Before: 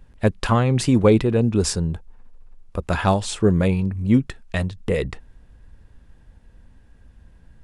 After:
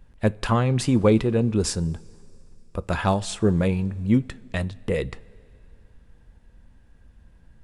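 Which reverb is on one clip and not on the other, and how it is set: two-slope reverb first 0.21 s, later 2.8 s, from -18 dB, DRR 16 dB; gain -3 dB

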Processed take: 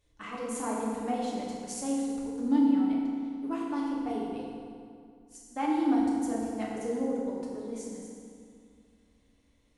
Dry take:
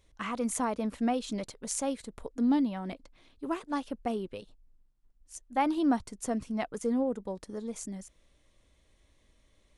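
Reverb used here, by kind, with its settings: FDN reverb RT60 2.3 s, low-frequency decay 1.2×, high-frequency decay 0.7×, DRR -5.5 dB; gain -8.5 dB

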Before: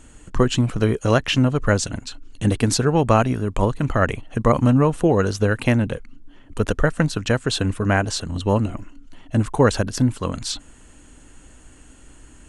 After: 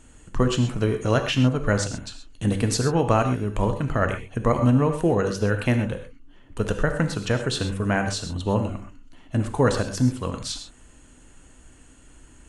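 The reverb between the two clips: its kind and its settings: non-linear reverb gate 0.15 s flat, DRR 5.5 dB; gain -4.5 dB

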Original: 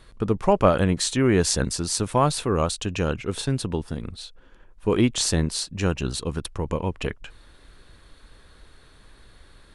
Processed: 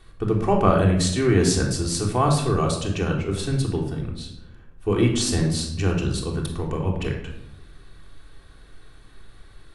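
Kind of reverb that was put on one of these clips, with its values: shoebox room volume 2200 m³, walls furnished, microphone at 3.5 m; gain -3.5 dB

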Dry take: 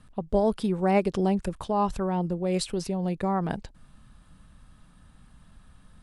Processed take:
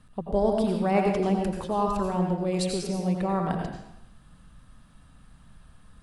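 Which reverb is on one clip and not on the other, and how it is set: plate-style reverb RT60 0.81 s, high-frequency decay 0.9×, pre-delay 75 ms, DRR 1 dB; gain -1.5 dB

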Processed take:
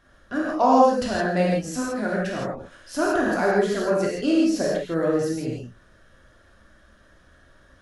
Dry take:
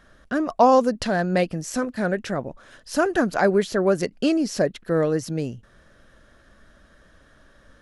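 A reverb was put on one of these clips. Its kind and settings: non-linear reverb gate 0.19 s flat, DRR -5 dB; gain -6.5 dB

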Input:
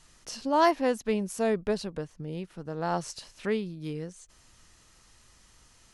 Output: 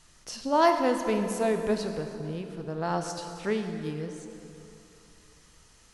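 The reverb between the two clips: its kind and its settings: plate-style reverb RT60 3 s, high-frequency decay 0.75×, DRR 5 dB

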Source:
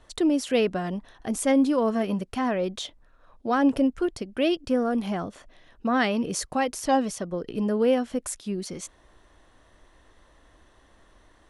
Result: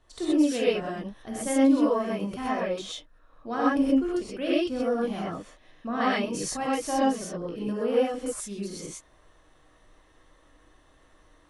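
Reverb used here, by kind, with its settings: non-linear reverb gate 0.15 s rising, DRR -7.5 dB; gain -9.5 dB

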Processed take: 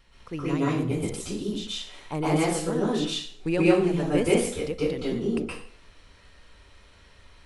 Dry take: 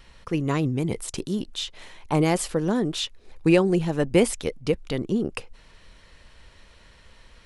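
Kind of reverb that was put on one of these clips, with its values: plate-style reverb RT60 0.55 s, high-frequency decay 0.85×, pre-delay 0.11 s, DRR -7.5 dB; gain -9 dB

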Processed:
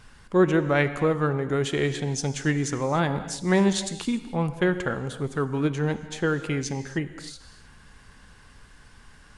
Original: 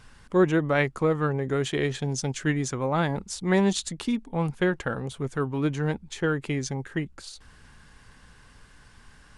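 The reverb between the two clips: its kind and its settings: non-linear reverb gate 0.32 s flat, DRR 10.5 dB; gain +1 dB

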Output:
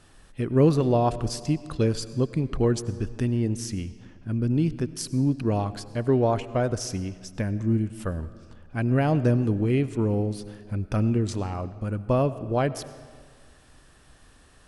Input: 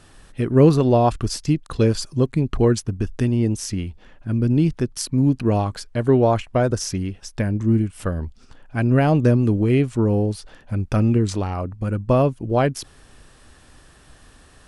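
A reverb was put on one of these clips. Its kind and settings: digital reverb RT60 1.8 s, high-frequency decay 0.75×, pre-delay 55 ms, DRR 15 dB; gain -5.5 dB

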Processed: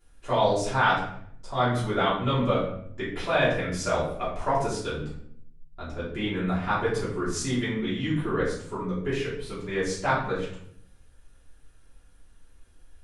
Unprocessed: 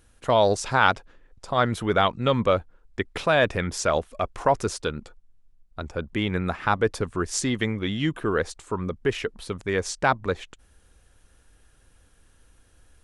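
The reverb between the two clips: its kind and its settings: shoebox room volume 120 m³, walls mixed, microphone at 3.1 m; gain -14 dB

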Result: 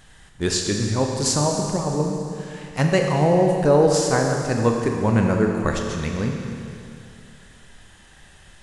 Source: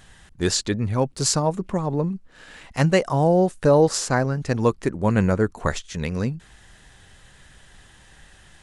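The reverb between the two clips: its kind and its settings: Schroeder reverb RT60 2.6 s, combs from 27 ms, DRR 1.5 dB; gain -1 dB

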